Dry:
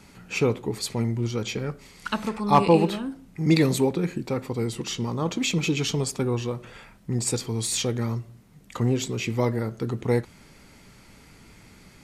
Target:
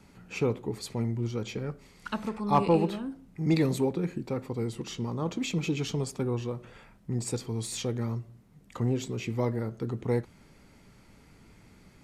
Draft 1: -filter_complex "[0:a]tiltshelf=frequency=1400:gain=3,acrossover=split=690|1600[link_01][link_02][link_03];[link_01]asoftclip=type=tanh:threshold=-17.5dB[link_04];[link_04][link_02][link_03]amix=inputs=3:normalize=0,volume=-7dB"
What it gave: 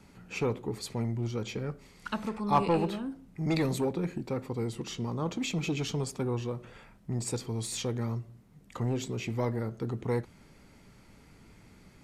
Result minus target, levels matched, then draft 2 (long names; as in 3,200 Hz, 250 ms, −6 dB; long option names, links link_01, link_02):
soft clipping: distortion +14 dB
-filter_complex "[0:a]tiltshelf=frequency=1400:gain=3,acrossover=split=690|1600[link_01][link_02][link_03];[link_01]asoftclip=type=tanh:threshold=-7dB[link_04];[link_04][link_02][link_03]amix=inputs=3:normalize=0,volume=-7dB"